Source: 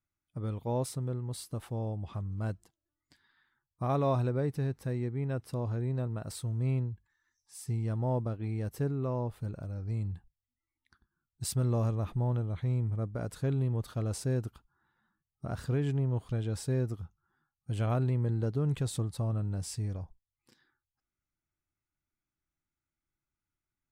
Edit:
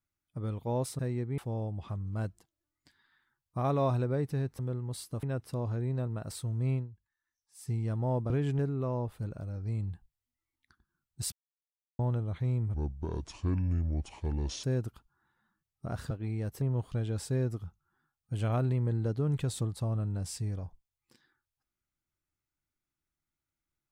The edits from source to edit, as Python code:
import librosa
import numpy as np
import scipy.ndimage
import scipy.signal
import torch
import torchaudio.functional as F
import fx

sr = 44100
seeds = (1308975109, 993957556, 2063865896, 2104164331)

y = fx.edit(x, sr, fx.swap(start_s=0.99, length_s=0.64, other_s=4.84, other_length_s=0.39),
    fx.fade_down_up(start_s=6.74, length_s=0.94, db=-11.0, fade_s=0.14),
    fx.swap(start_s=8.3, length_s=0.51, other_s=15.7, other_length_s=0.29),
    fx.silence(start_s=11.54, length_s=0.67),
    fx.speed_span(start_s=12.96, length_s=1.27, speed=0.67), tone=tone)